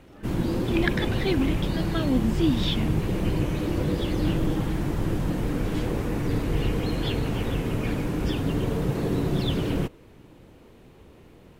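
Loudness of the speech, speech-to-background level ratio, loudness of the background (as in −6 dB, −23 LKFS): −28.0 LKFS, −1.0 dB, −27.0 LKFS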